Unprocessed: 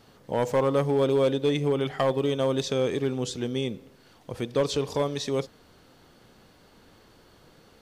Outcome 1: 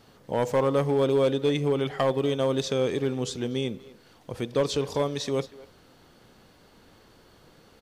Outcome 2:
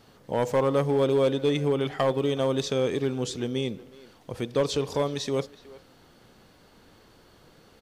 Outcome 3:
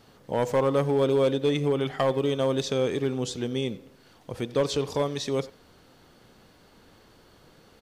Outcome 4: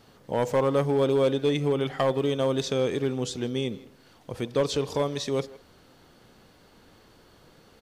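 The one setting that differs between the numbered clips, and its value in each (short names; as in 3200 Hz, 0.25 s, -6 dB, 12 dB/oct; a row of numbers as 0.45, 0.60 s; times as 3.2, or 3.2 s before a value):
speakerphone echo, time: 240, 370, 90, 160 ms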